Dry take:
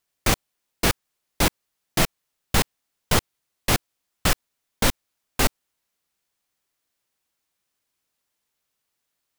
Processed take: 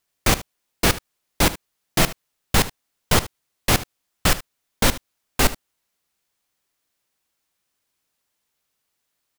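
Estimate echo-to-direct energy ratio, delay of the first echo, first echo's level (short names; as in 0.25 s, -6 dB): -16.5 dB, 75 ms, -16.5 dB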